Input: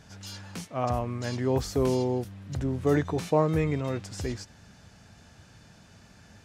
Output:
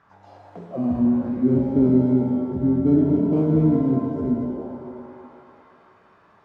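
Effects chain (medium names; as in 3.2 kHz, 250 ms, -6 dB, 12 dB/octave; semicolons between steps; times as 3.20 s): tilt EQ -2 dB/octave; in parallel at -3.5 dB: sample-rate reducer 1.8 kHz, jitter 0%; on the sum: feedback echo behind a band-pass 210 ms, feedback 83%, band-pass 660 Hz, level -20 dB; auto-wah 240–1400 Hz, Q 5.2, down, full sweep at -22.5 dBFS; pitch-shifted reverb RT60 2 s, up +7 st, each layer -8 dB, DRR 0.5 dB; trim +8 dB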